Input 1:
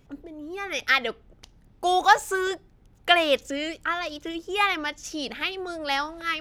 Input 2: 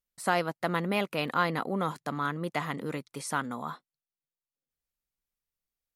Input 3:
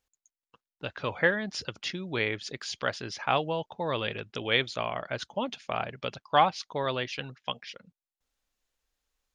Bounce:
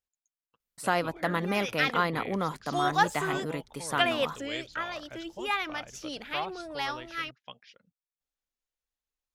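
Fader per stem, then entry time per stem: -7.0, 0.0, -12.5 dB; 0.90, 0.60, 0.00 s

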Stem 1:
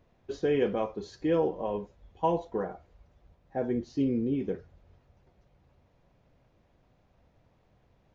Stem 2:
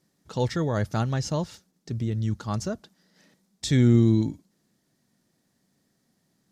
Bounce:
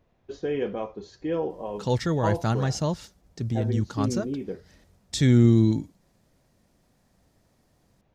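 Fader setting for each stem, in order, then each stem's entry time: -1.5, +1.0 dB; 0.00, 1.50 s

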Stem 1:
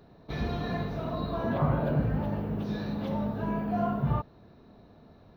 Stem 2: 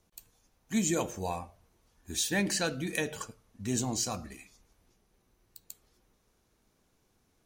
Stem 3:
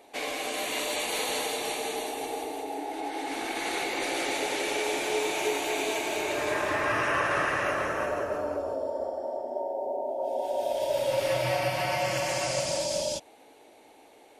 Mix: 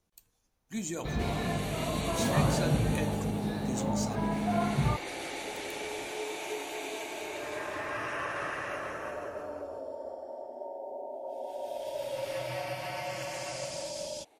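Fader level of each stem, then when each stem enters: -0.5, -7.0, -8.5 dB; 0.75, 0.00, 1.05 s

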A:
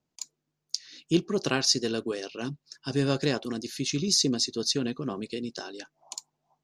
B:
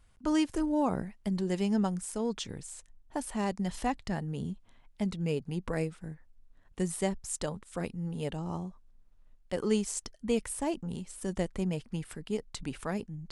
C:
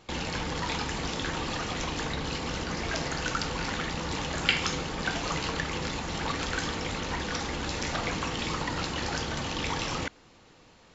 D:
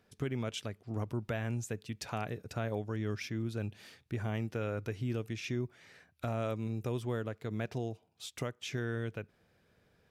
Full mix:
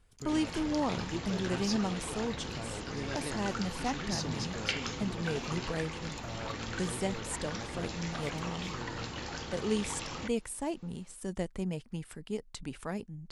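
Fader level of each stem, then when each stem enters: -14.5, -3.0, -8.5, -8.5 dB; 0.00, 0.00, 0.20, 0.00 s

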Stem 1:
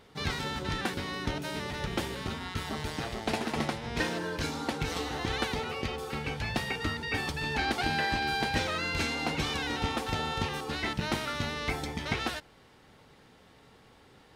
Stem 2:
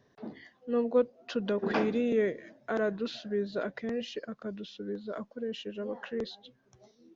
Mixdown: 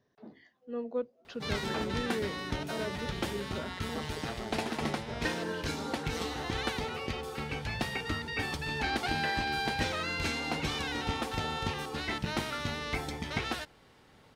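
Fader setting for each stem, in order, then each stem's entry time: -2.0, -8.0 dB; 1.25, 0.00 s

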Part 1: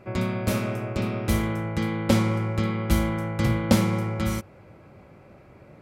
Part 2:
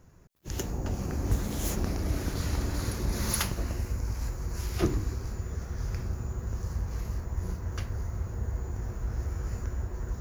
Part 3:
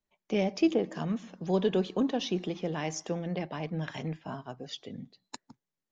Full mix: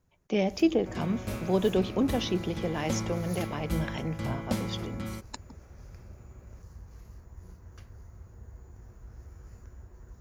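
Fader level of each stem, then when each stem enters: -11.0, -15.0, +1.5 dB; 0.80, 0.00, 0.00 s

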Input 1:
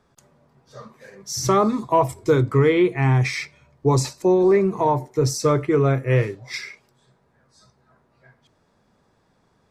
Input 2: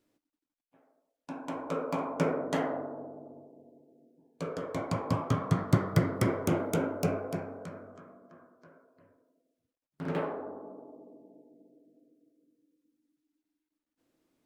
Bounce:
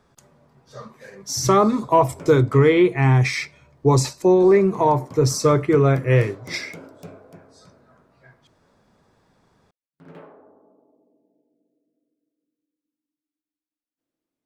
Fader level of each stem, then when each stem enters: +2.0, -11.0 dB; 0.00, 0.00 s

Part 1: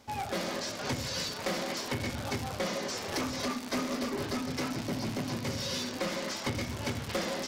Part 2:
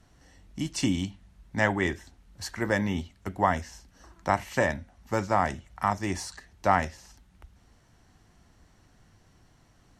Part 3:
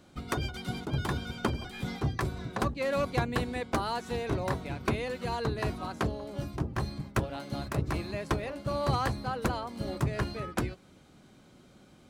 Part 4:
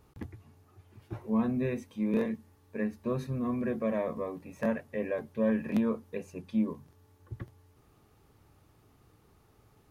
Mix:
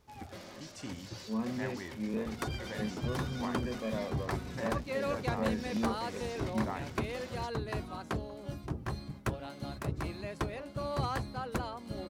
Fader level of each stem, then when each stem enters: -14.5, -17.5, -5.0, -6.5 dB; 0.00, 0.00, 2.10, 0.00 s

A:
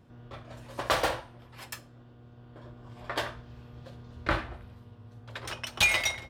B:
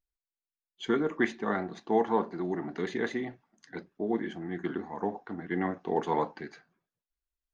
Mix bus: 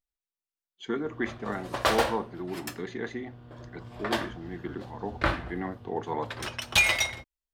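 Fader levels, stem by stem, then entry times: +2.0, -3.5 dB; 0.95, 0.00 s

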